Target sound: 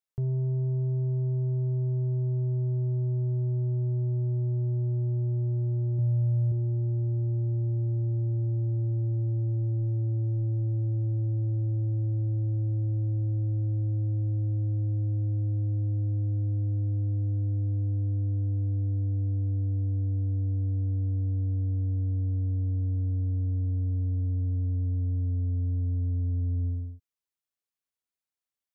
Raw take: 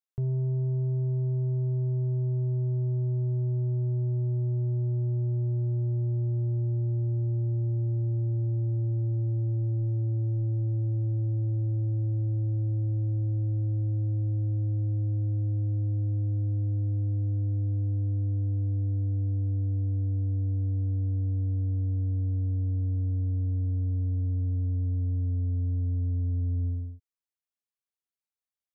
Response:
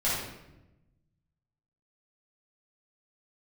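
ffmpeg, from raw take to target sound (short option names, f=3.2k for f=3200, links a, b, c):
-filter_complex "[0:a]asettb=1/sr,asplit=3[a][b][c];[a]atrim=end=5.984[d];[b]atrim=start=5.98:end=6.52,asetpts=PTS-STARTPTS,afade=t=in:d=0.004:c=qsin,afade=t=out:st=0.536:d=0.004:c=qsin,aecho=1:1:6.9:0.65,atrim=end_sample=23814[e];[c]atrim=start=6.516[f];[d][e]acrossfade=d=0.004:c1=hsin:c2=qsin[g];[g][f]acrossfade=d=0.004:c1=qsin:c2=hsin"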